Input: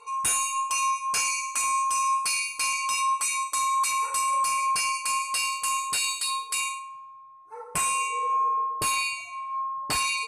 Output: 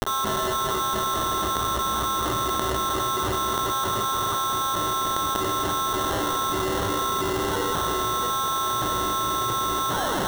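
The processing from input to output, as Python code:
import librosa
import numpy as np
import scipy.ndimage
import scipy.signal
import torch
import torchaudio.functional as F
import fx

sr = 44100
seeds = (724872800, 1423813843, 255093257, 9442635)

y = fx.tape_stop_end(x, sr, length_s=0.37)
y = fx.echo_feedback(y, sr, ms=685, feedback_pct=50, wet_db=-4.0)
y = fx.dmg_buzz(y, sr, base_hz=400.0, harmonics=7, level_db=-48.0, tilt_db=-4, odd_only=False)
y = fx.echo_multitap(y, sr, ms=(108, 283), db=(-8.0, -5.0))
y = fx.quant_companded(y, sr, bits=2)
y = scipy.signal.sosfilt(scipy.signal.butter(2, 4700.0, 'lowpass', fs=sr, output='sos'), y)
y = fx.notch(y, sr, hz=2400.0, q=8.0)
y = fx.sample_hold(y, sr, seeds[0], rate_hz=2400.0, jitter_pct=0)
y = fx.env_flatten(y, sr, amount_pct=100)
y = y * librosa.db_to_amplitude(-4.0)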